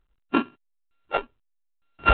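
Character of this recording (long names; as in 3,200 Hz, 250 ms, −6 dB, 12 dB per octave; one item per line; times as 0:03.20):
a buzz of ramps at a fixed pitch in blocks of 32 samples
tremolo saw down 1.1 Hz, depth 60%
mu-law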